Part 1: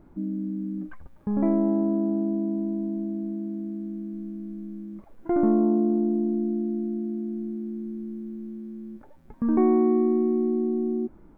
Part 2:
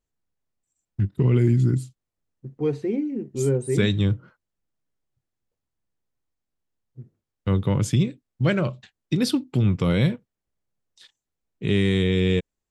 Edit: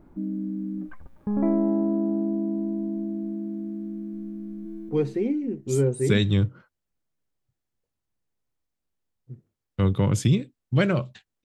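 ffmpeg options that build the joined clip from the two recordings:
-filter_complex "[0:a]apad=whole_dur=11.44,atrim=end=11.44,atrim=end=4.892[a];[1:a]atrim=start=2.568:end=9.12[b];[a][b]acrossfade=d=0.004:c1=hsin:c2=hsin,asplit=2[c][d];[d]afade=t=in:st=4.41:d=0.01,afade=t=out:st=4.89:d=0.01,aecho=0:1:240|480|720|960|1200|1440|1680:0.707946|0.353973|0.176986|0.0884932|0.0442466|0.0221233|0.0110617[e];[c][e]amix=inputs=2:normalize=0"

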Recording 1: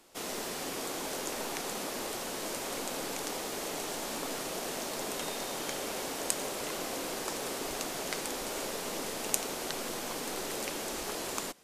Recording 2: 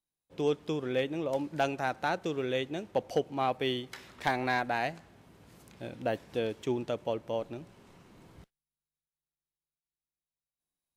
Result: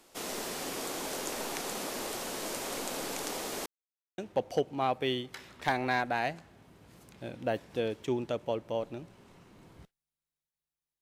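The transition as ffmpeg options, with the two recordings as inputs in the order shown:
-filter_complex "[0:a]apad=whole_dur=11.01,atrim=end=11.01,asplit=2[a][b];[a]atrim=end=3.66,asetpts=PTS-STARTPTS,afade=t=out:st=3.656:d=0.004:c=hsin[c];[b]atrim=start=3.66:end=4.18,asetpts=PTS-STARTPTS,volume=0[d];[1:a]atrim=start=2.77:end=9.6,asetpts=PTS-STARTPTS,afade=t=in:d=0.004:c=hsin[e];[c][d][e]concat=n=3:v=0:a=1"

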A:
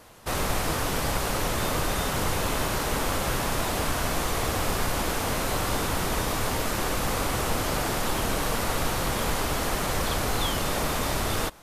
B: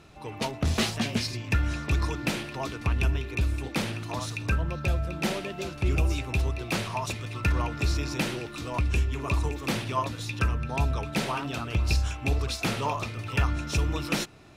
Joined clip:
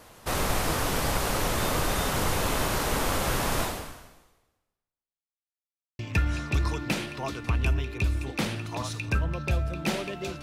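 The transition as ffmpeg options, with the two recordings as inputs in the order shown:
-filter_complex "[0:a]apad=whole_dur=10.42,atrim=end=10.42,asplit=2[a][b];[a]atrim=end=5.48,asetpts=PTS-STARTPTS,afade=t=out:st=3.62:d=1.86:c=exp[c];[b]atrim=start=5.48:end=5.99,asetpts=PTS-STARTPTS,volume=0[d];[1:a]atrim=start=1.36:end=5.79,asetpts=PTS-STARTPTS,afade=t=in:d=0.004:c=hsin[e];[c][d][e]concat=n=3:v=0:a=1"

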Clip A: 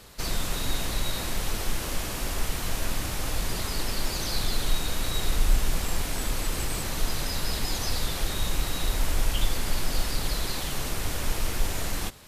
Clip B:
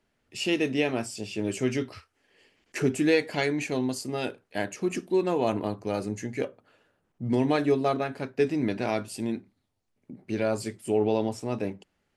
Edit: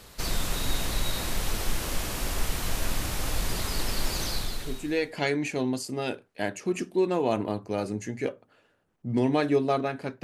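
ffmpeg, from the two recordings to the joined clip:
-filter_complex "[0:a]apad=whole_dur=10.23,atrim=end=10.23,atrim=end=5.23,asetpts=PTS-STARTPTS[a];[1:a]atrim=start=2.39:end=8.39,asetpts=PTS-STARTPTS[b];[a][b]acrossfade=d=1:c1=qua:c2=qua"

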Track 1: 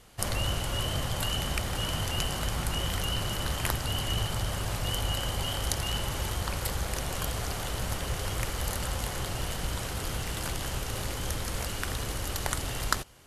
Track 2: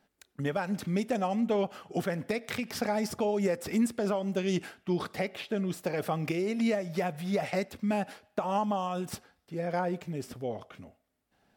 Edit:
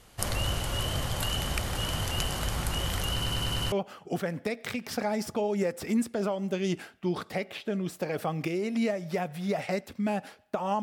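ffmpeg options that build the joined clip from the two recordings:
-filter_complex "[0:a]apad=whole_dur=10.82,atrim=end=10.82,asplit=6[a][b][c][d][e][f];[a]atrim=end=3.222[g];[b]atrim=start=3.118:end=3.222[h];[c]atrim=start=3.118:end=3.222[i];[d]atrim=start=3.118:end=3.222[j];[e]atrim=start=3.118:end=3.222[k];[f]atrim=start=3.118:end=3.222[l];[1:a]atrim=start=1.558:end=8.66[m];[g][h]acrossfade=d=0.004:c1=hsin:c2=hsin[n];[n][i]acrossfade=d=0.004:c1=hsin:c2=hsin[o];[o][j]acrossfade=d=0.004:c1=hsin:c2=hsin[p];[p][k]acrossfade=d=0.004:c1=hsin:c2=hsin[q];[q][l]acrossfade=d=0.004:c1=hsin:c2=hsin[r];[r][m]acrossfade=d=0.004:c1=hsin:c2=hsin"

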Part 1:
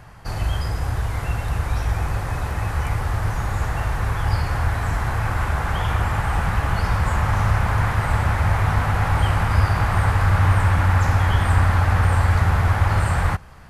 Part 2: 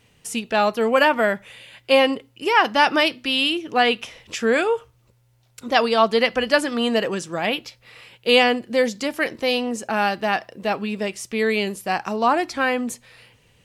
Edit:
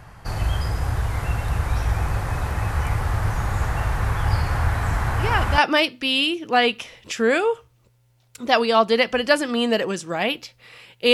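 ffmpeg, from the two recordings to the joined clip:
-filter_complex "[1:a]asplit=2[a][b];[0:a]apad=whole_dur=11.13,atrim=end=11.13,atrim=end=5.582[c];[b]atrim=start=2.808:end=8.36[d];[a]atrim=start=2.4:end=2.81,asetpts=PTS-STARTPTS,volume=-6.5dB,afade=t=in:d=0.004:c=hsin,afade=t=out:st=0.406:d=0.004:c=hsin,adelay=227997S[e];[c][d]acrossfade=d=0.004:c1=hsin:c2=hsin[f];[f][e]amix=inputs=2:normalize=0"

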